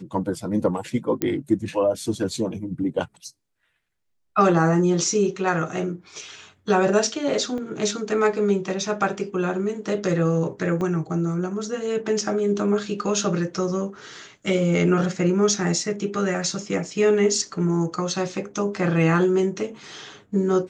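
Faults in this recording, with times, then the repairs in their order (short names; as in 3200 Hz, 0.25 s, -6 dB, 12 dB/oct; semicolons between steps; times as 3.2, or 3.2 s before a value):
1.22 pop -8 dBFS
7.58 gap 2.3 ms
10.81 gap 2.2 ms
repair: de-click; interpolate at 7.58, 2.3 ms; interpolate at 10.81, 2.2 ms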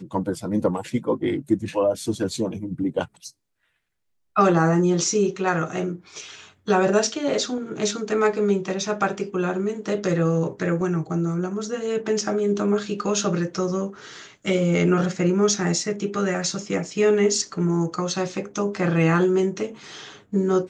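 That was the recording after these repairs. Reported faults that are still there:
none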